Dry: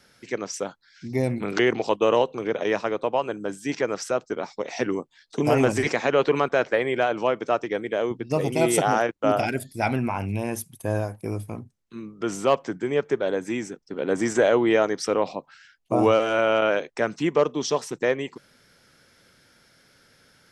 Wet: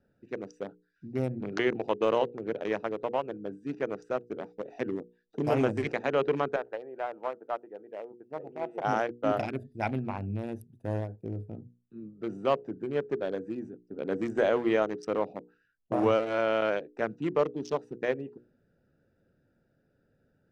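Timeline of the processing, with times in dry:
6.56–8.85 band-pass 920 Hz, Q 1.6
whole clip: Wiener smoothing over 41 samples; high shelf 4400 Hz -6 dB; notches 60/120/180/240/300/360/420/480 Hz; gain -5 dB

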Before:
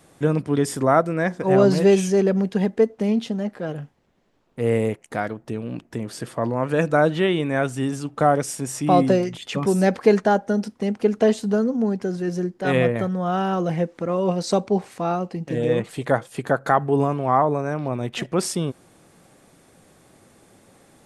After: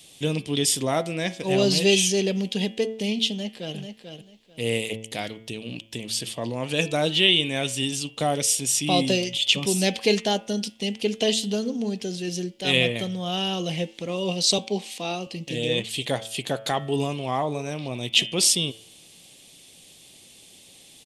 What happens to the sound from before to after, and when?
3.3–3.77 echo throw 0.44 s, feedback 20%, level -7.5 dB
14.58–15.27 HPF 180 Hz 24 dB/oct
whole clip: resonant high shelf 2100 Hz +13.5 dB, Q 3; de-hum 110.7 Hz, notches 32; gain -5 dB

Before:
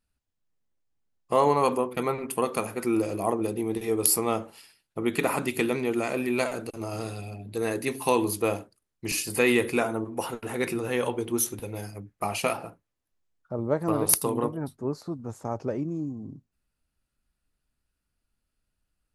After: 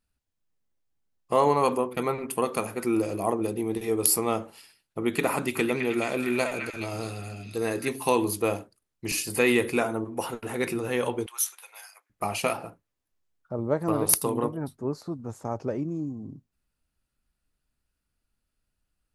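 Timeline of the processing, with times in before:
5.34–7.88 delay with a stepping band-pass 0.212 s, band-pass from 1900 Hz, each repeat 0.7 oct, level -2 dB
11.26–12.1 inverse Chebyshev high-pass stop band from 220 Hz, stop band 70 dB

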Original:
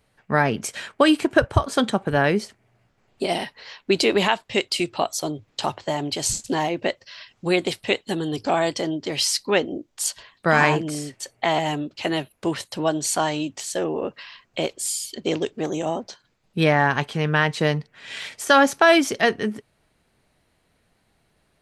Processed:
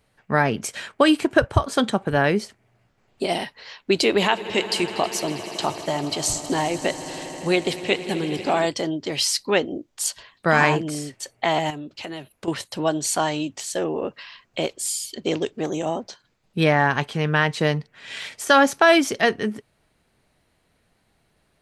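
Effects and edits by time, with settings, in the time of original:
4.05–8.66 swelling echo 80 ms, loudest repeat 5, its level -18 dB
11.7–12.48 compressor 4:1, threshold -31 dBFS

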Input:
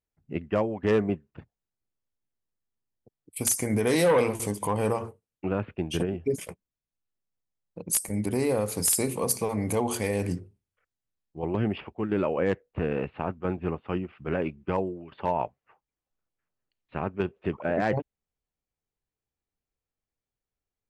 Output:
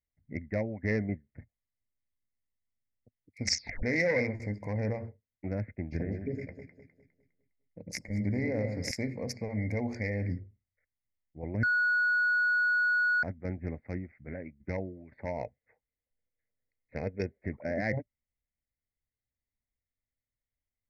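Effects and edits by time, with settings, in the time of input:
3.42 tape stop 0.41 s
5.82–8.91 echo with dull and thin repeats by turns 0.102 s, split 1000 Hz, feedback 62%, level -5 dB
11.63–13.23 bleep 1460 Hz -13 dBFS
13.93–14.6 fade out, to -11.5 dB
15.36–17.26 small resonant body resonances 470/2500 Hz, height 10 dB -> 14 dB
whole clip: Wiener smoothing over 15 samples; EQ curve 110 Hz 0 dB, 170 Hz -8 dB, 240 Hz -2 dB, 390 Hz -13 dB, 590 Hz -4 dB, 1200 Hz -23 dB, 2100 Hz +14 dB, 3100 Hz -25 dB, 5400 Hz +6 dB, 8500 Hz -27 dB

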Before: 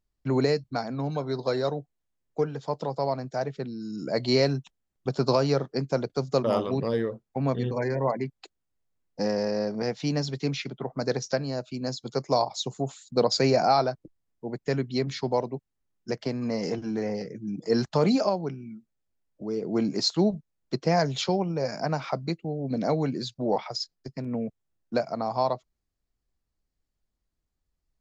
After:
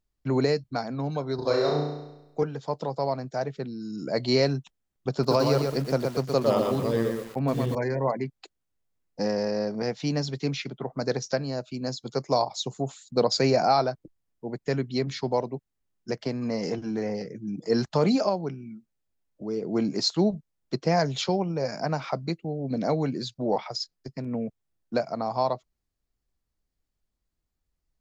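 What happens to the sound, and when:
1.35–2.43 flutter echo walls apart 5.8 m, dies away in 0.93 s
5.11–7.75 lo-fi delay 0.121 s, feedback 35%, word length 7-bit, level -4 dB

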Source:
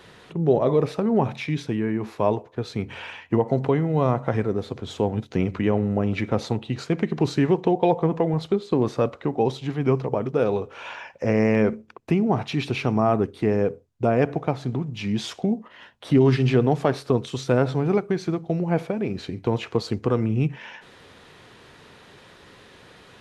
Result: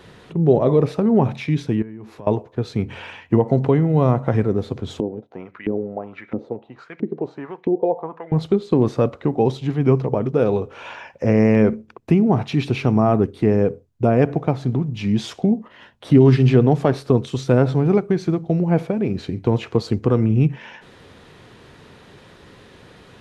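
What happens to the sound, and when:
1.82–2.27 compressor 3:1, threshold -43 dBFS
5–8.32 LFO band-pass saw up 1.5 Hz 270–2200 Hz
whole clip: low shelf 470 Hz +7 dB

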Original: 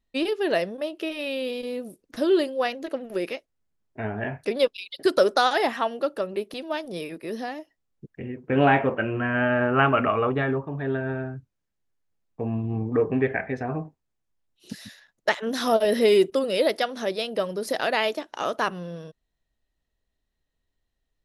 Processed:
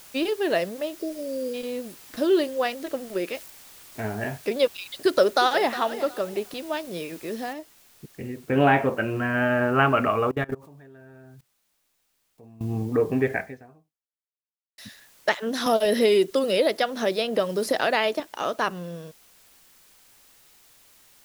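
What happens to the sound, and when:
0.94–1.54 spectral delete 700–4500 Hz
3.35–4 switching spikes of -35 dBFS
5.02–5.73 echo throw 0.36 s, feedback 25%, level -13.5 dB
7.53 noise floor step -48 dB -56 dB
10.31–12.61 level quantiser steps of 24 dB
13.38–14.78 fade out exponential
15.66–18.2 three-band squash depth 70%

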